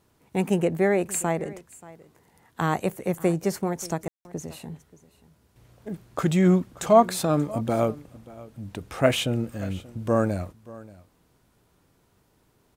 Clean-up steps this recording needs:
ambience match 0:04.08–0:04.25
echo removal 582 ms −20 dB

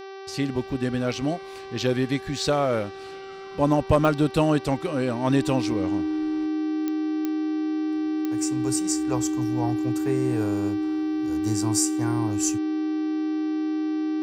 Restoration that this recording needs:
click removal
hum removal 387.8 Hz, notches 15
notch filter 310 Hz, Q 30

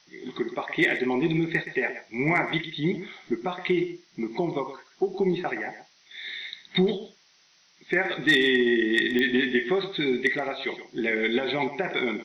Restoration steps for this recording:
click removal
broadband denoise 13 dB, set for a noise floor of −57 dBFS
echo removal 122 ms −12 dB

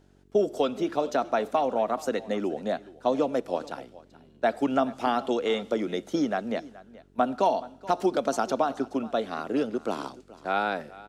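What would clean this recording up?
hum removal 46.9 Hz, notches 9
echo removal 426 ms −19.5 dB

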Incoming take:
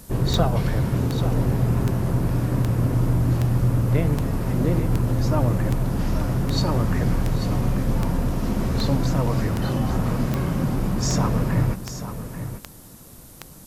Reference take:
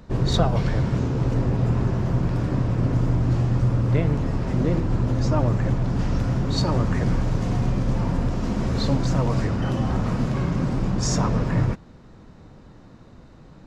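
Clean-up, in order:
click removal
noise reduction from a noise print 13 dB
echo removal 839 ms −10.5 dB

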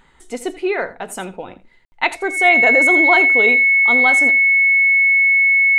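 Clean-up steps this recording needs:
notch filter 2,200 Hz, Q 30
ambience match 0:01.85–0:01.92
echo removal 83 ms −16.5 dB

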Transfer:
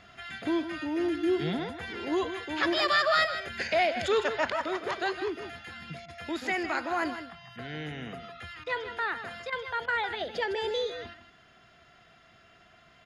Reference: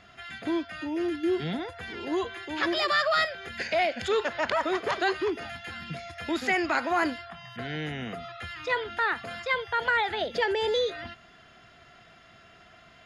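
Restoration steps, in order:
repair the gap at 0:06.06/0:08.64/0:09.50/0:09.86, 22 ms
echo removal 157 ms −10.5 dB
level 0 dB, from 0:04.49 +4.5 dB

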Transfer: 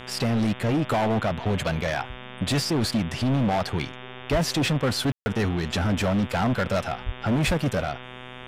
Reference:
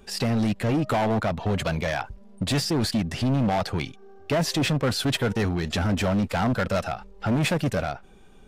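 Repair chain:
hum removal 125.7 Hz, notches 29
0:04.31–0:04.43: high-pass filter 140 Hz 24 dB per octave
0:07.05–0:07.17: high-pass filter 140 Hz 24 dB per octave
0:07.46–0:07.58: high-pass filter 140 Hz 24 dB per octave
ambience match 0:05.12–0:05.26

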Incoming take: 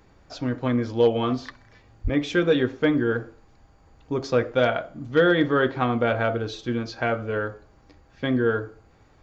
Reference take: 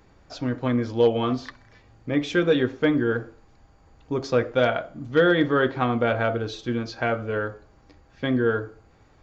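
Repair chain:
0:02.03–0:02.15: high-pass filter 140 Hz 24 dB per octave

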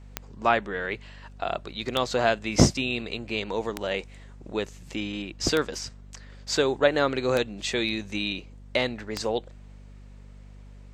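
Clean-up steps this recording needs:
click removal
hum removal 49.3 Hz, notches 5

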